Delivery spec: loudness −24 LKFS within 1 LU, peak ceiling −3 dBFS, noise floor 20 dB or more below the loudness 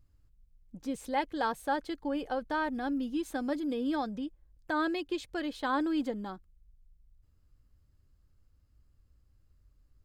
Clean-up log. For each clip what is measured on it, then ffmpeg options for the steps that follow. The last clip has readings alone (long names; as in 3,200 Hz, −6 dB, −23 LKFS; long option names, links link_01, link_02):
integrated loudness −33.5 LKFS; sample peak −18.5 dBFS; target loudness −24.0 LKFS
→ -af "volume=9.5dB"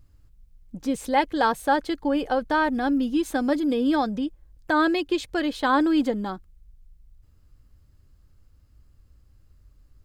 integrated loudness −24.0 LKFS; sample peak −9.0 dBFS; background noise floor −58 dBFS